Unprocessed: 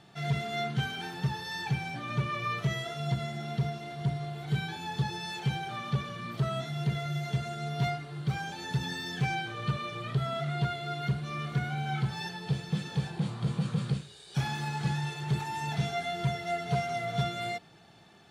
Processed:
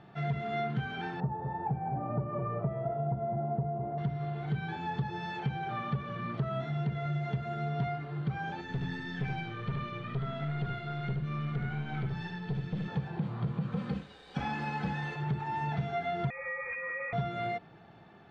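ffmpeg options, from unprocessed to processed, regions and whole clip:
-filter_complex "[0:a]asettb=1/sr,asplit=3[s0][s1][s2];[s0]atrim=end=1.204[s3];[s1]atrim=start=1.2:end=3.98,asetpts=PTS-STARTPTS,afade=t=in:d=0.004:c=qsin,afade=t=out:st=2.776:d=0.004:c=qsin,lowpass=f=740:t=q:w=2,aecho=1:1:206:0.299,atrim=end_sample=122598[s4];[s2]atrim=start=3.976[s5];[s3][s4]acrossfade=d=0.004:c1=hsin:c2=qsin[s6];[s6][s5]acrossfade=d=0.004:c1=qsin:c2=hsin,asettb=1/sr,asplit=3[s7][s8][s9];[s7]atrim=end=8.614[s10];[s8]atrim=start=8.61:end=12.88,asetpts=PTS-STARTPTS,afade=t=in:d=0.004:c=qsin,afade=t=out:st=4.266:d=0.004:c=qsin,equalizer=f=740:t=o:w=1.8:g=-9,aeval=exprs='(tanh(31.6*val(0)+0.3)-tanh(0.3))/31.6':c=same,aecho=1:1:73:0.596,atrim=end_sample=188307[s11];[s9]atrim=start=12.876[s12];[s10][s11]acrossfade=d=0.004:c1=hsin:c2=qsin[s13];[s13][s12]acrossfade=d=0.004:c1=qsin:c2=hsin,asettb=1/sr,asplit=3[s14][s15][s16];[s14]atrim=end=13.724[s17];[s15]atrim=start=13.72:end=15.16,asetpts=PTS-STARTPTS,afade=t=in:d=0.004:c=qsin,afade=t=out:st=1.436:d=0.004:c=qsin,highshelf=f=6800:g=6,aecho=1:1:3.9:0.75,atrim=end_sample=63504,acrusher=bits=7:mix=0:aa=0.5[s18];[s16]atrim=start=15.156[s19];[s17][s18]acrossfade=d=0.004:c1=hsin:c2=qsin[s20];[s20][s19]acrossfade=d=0.004:c1=qsin:c2=hsin,asettb=1/sr,asplit=3[s21][s22][s23];[s21]atrim=end=16.304[s24];[s22]atrim=start=16.3:end=17.13,asetpts=PTS-STARTPTS,afade=t=in:d=0.004:c=qsin,afade=t=out:st=0.826:d=0.004:c=qsin,lowpass=f=2200:t=q:w=0.5098,lowpass=f=2200:t=q:w=0.6013,lowpass=f=2200:t=q:w=0.9,lowpass=f=2200:t=q:w=2.563,afreqshift=-2600,acompressor=threshold=0.0224:ratio=12:attack=3.2:release=140:knee=1:detection=peak,lowshelf=f=140:g=7.5[s25];[s23]atrim=start=17.126[s26];[s24][s25]acrossfade=d=0.004:c1=hsin:c2=qsin[s27];[s27][s26]acrossfade=d=0.004:c1=qsin:c2=hsin,lowpass=1900,acompressor=threshold=0.0251:ratio=6,volume=1.41"

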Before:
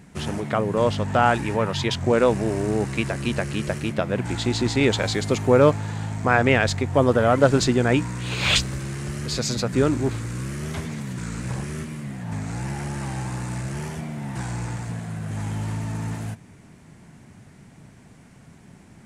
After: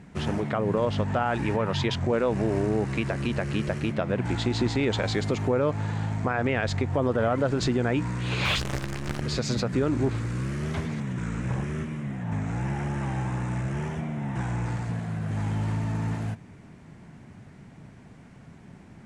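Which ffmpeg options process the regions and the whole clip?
-filter_complex "[0:a]asettb=1/sr,asplit=3[s0][s1][s2];[s0]atrim=end=8.454[s3];[s1]atrim=start=8.45:end=9.22,asetpts=PTS-STARTPTS,afade=t=in:d=0.004:c=qsin,afade=t=out:st=0.766:d=0.004:c=qsin,equalizer=f=1100:w=2.9:g=4.5,acrusher=bits=5:dc=4:mix=0:aa=0.000001[s4];[s2]atrim=start=9.216[s5];[s3][s4]acrossfade=d=0.004:c1=hsin:c2=qsin[s6];[s6][s5]acrossfade=d=0.004:c1=qsin:c2=hsin,asettb=1/sr,asplit=3[s7][s8][s9];[s7]atrim=end=11.004[s10];[s8]atrim=start=11:end=14.66,asetpts=PTS-STARTPTS,afade=t=in:d=0.004:c=qsin,afade=t=out:st=3.656:d=0.004:c=qsin,lowpass=8900,equalizer=f=4500:t=o:w=0.35:g=-10.5[s11];[s9]atrim=start=14.656[s12];[s10][s11]acrossfade=d=0.004:c1=hsin:c2=qsin[s13];[s13][s12]acrossfade=d=0.004:c1=qsin:c2=hsin,aemphasis=mode=reproduction:type=50fm,alimiter=limit=0.168:level=0:latency=1:release=107"

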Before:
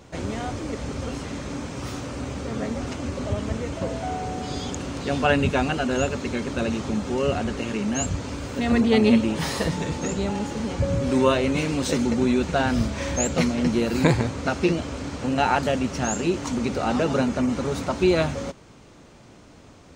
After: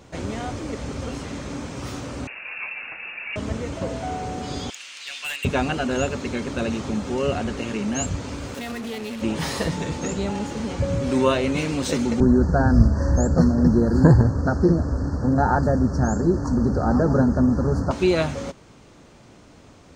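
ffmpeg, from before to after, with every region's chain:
-filter_complex "[0:a]asettb=1/sr,asplit=3[s0][s1][s2];[s0]atrim=end=2.274[s3];[s1]atrim=start=2.27:end=3.36,asetpts=PTS-STARTPTS,afade=t=in:d=0.004:c=qsin,afade=t=out:st=1.086:d=0.004:c=qsin,highpass=f=420:p=1,lowpass=f=2500:t=q:w=0.5098,lowpass=f=2500:t=q:w=0.6013,lowpass=f=2500:t=q:w=0.9,lowpass=f=2500:t=q:w=2.563,afreqshift=-2900[s4];[s2]atrim=start=3.356[s5];[s3][s4]acrossfade=d=0.004:c1=hsin:c2=qsin[s6];[s6][s5]acrossfade=d=0.004:c1=qsin:c2=hsin,asettb=1/sr,asplit=3[s7][s8][s9];[s7]atrim=end=4.704[s10];[s8]atrim=start=4.7:end=5.45,asetpts=PTS-STARTPTS,afade=t=in:d=0.004:c=qsin,afade=t=out:st=0.746:d=0.004:c=qsin,highpass=f=2500:t=q:w=1.8,asoftclip=type=hard:threshold=0.0473[s11];[s9]atrim=start=5.446[s12];[s10][s11]acrossfade=d=0.004:c1=hsin:c2=qsin[s13];[s13][s12]acrossfade=d=0.004:c1=qsin:c2=hsin,asettb=1/sr,asplit=3[s14][s15][s16];[s14]atrim=end=8.544[s17];[s15]atrim=start=8.54:end=9.22,asetpts=PTS-STARTPTS,afade=t=in:d=0.004:c=qsin,afade=t=out:st=0.676:d=0.004:c=qsin,lowshelf=f=350:g=-9.5,acompressor=threshold=0.0447:ratio=16:attack=3.2:release=140:knee=1:detection=peak,acrusher=bits=5:mix=0:aa=0.5[s18];[s16]atrim=start=9.216[s19];[s17][s18]acrossfade=d=0.004:c1=hsin:c2=qsin[s20];[s20][s19]acrossfade=d=0.004:c1=qsin:c2=hsin,asettb=1/sr,asplit=3[s21][s22][s23];[s21]atrim=end=12.204[s24];[s22]atrim=start=12.2:end=17.91,asetpts=PTS-STARTPTS,afade=t=in:d=0.004:c=qsin,afade=t=out:st=5.706:d=0.004:c=qsin,asuperstop=centerf=2800:order=20:qfactor=1.1,aemphasis=mode=reproduction:type=bsi[s25];[s23]atrim=start=17.906[s26];[s24][s25]acrossfade=d=0.004:c1=hsin:c2=qsin[s27];[s27][s26]acrossfade=d=0.004:c1=qsin:c2=hsin"

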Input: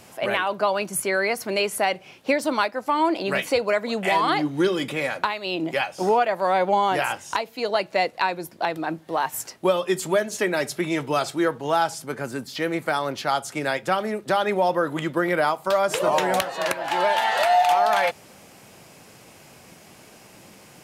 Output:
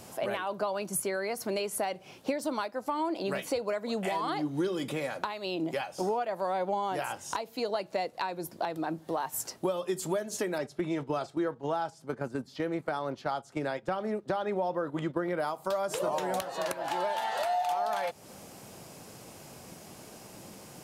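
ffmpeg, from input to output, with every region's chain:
-filter_complex "[0:a]asettb=1/sr,asplit=3[s0][s1][s2];[s0]atrim=end=10.584[s3];[s1]atrim=start=10.58:end=15.4,asetpts=PTS-STARTPTS,afade=t=in:d=0.004:c=qsin,afade=t=out:st=4.816:d=0.004:c=qsin,aemphasis=mode=reproduction:type=50fm,agate=range=0.355:threshold=0.0251:ratio=16:release=100:detection=peak[s4];[s2]atrim=start=15.396[s5];[s3][s4]acrossfade=d=0.004:c1=hsin:c2=qsin[s6];[s6][s5]acrossfade=d=0.004:c1=qsin:c2=hsin,acompressor=threshold=0.0282:ratio=3,equalizer=f=2200:w=0.96:g=-7,volume=1.12"

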